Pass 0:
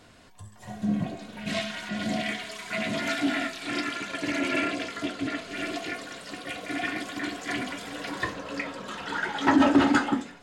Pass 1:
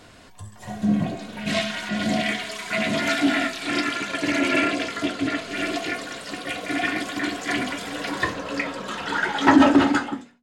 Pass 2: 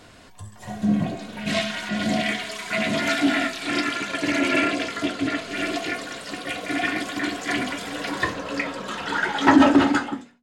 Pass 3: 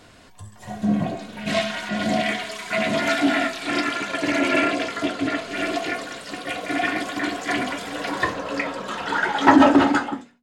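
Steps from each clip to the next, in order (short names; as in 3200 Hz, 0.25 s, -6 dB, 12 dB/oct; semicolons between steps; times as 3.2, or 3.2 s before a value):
ending faded out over 0.86 s; notches 60/120/180/240 Hz; gain +6 dB
nothing audible
dynamic EQ 760 Hz, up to +5 dB, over -36 dBFS, Q 0.71; gain -1 dB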